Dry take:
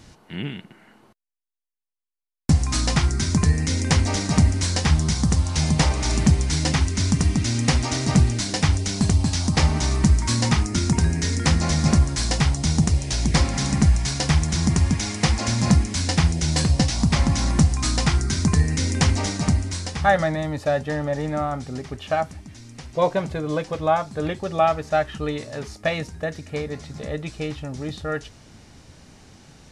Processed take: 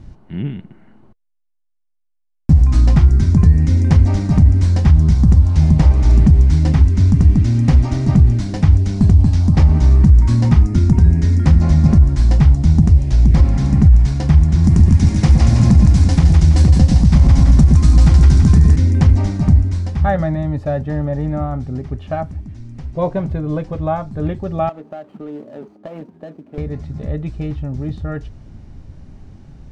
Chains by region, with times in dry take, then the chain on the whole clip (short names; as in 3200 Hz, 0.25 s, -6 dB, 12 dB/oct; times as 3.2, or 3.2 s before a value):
14.64–18.76 high shelf 5000 Hz +9.5 dB + split-band echo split 680 Hz, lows 0.118 s, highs 0.163 s, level -3 dB
24.69–26.58 median filter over 25 samples + HPF 230 Hz 24 dB/oct + compressor 4:1, threshold -28 dBFS
whole clip: tilt -4 dB/oct; notch 470 Hz, Q 12; maximiser -1.5 dB; gain -1 dB